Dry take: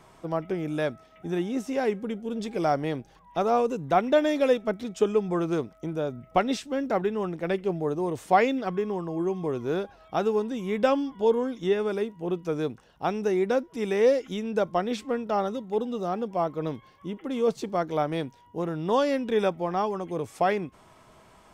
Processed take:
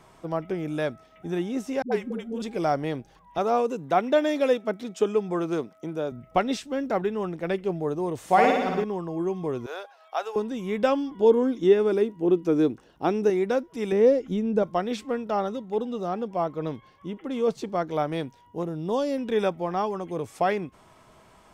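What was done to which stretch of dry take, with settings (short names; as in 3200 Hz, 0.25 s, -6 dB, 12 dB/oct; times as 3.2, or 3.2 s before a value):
1.82–2.42 dispersion highs, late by 98 ms, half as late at 340 Hz
3.38–6.12 HPF 170 Hz
8.18–8.84 flutter echo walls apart 9.9 m, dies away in 1.1 s
9.66–10.36 HPF 590 Hz 24 dB/oct
11.11–13.3 bell 320 Hz +11 dB
13.92–14.63 tilt shelf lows +7.5 dB, about 650 Hz
15.32–17.94 high shelf 8100 Hz -5 dB
18.63–19.18 bell 1700 Hz -11 dB 1.8 oct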